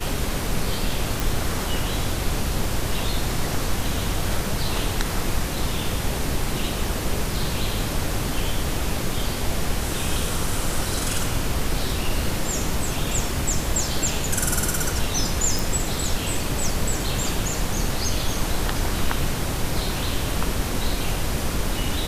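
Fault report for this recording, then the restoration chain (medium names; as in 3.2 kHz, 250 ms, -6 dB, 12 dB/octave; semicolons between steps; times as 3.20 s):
1.20 s: pop
15.59 s: pop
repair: de-click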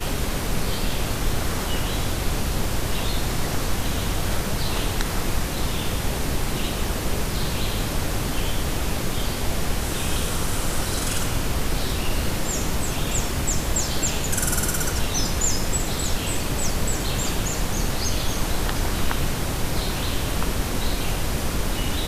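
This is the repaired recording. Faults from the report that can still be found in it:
nothing left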